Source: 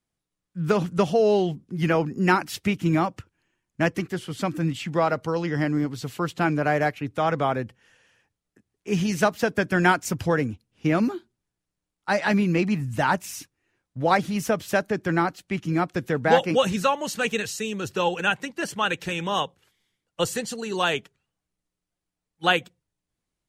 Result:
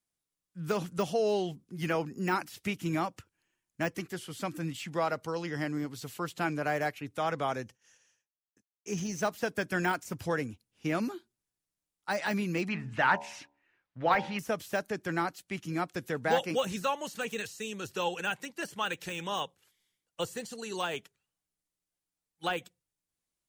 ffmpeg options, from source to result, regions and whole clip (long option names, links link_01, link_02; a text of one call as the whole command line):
ffmpeg -i in.wav -filter_complex "[0:a]asettb=1/sr,asplit=3[link_01][link_02][link_03];[link_01]atrim=end=7.484[link_04];[link_02]atrim=start=7.48:end=9.22,asetpts=PTS-STARTPTS,afade=type=in:duration=0.004:curve=qsin,afade=type=out:start_time=1.736:duration=0.004:curve=qsin,equalizer=frequency=6100:width=3:gain=13.5,agate=range=-33dB:threshold=-55dB:ratio=3:release=100:detection=peak[link_05];[link_03]atrim=start=9.216[link_06];[link_04][link_05]acrossfade=duration=0.004:curve1=hsin:curve2=qsin[link_07];[link_07][link_06]acrossfade=duration=0.004:curve1=qsin:curve2=hsin,asettb=1/sr,asplit=3[link_08][link_09][link_10];[link_08]atrim=end=12.694[link_11];[link_09]atrim=start=12.69:end=14.39,asetpts=PTS-STARTPTS,afade=type=in:duration=0.004:curve=qsin,afade=type=out:start_time=1.696:duration=0.004:curve=qsin,lowpass=3200,equalizer=frequency=1800:width=0.53:gain=9,bandreject=frequency=71.43:width_type=h:width=4,bandreject=frequency=142.86:width_type=h:width=4,bandreject=frequency=214.29:width_type=h:width=4,bandreject=frequency=285.72:width_type=h:width=4,bandreject=frequency=357.15:width_type=h:width=4,bandreject=frequency=428.58:width_type=h:width=4,bandreject=frequency=500.01:width_type=h:width=4,bandreject=frequency=571.44:width_type=h:width=4,bandreject=frequency=642.87:width_type=h:width=4,bandreject=frequency=714.3:width_type=h:width=4,bandreject=frequency=785.73:width_type=h:width=4,bandreject=frequency=857.16:width_type=h:width=4,bandreject=frequency=928.59:width_type=h:width=4,bandreject=frequency=1000.02:width_type=h:width=4[link_12];[link_10]atrim=start=14.386[link_13];[link_11][link_12]acrossfade=duration=0.004:curve1=hsin:curve2=qsin[link_14];[link_14][link_13]acrossfade=duration=0.004:curve1=qsin:curve2=hsin,aemphasis=mode=production:type=cd,deesser=0.7,lowshelf=frequency=270:gain=-5,volume=-7dB" out.wav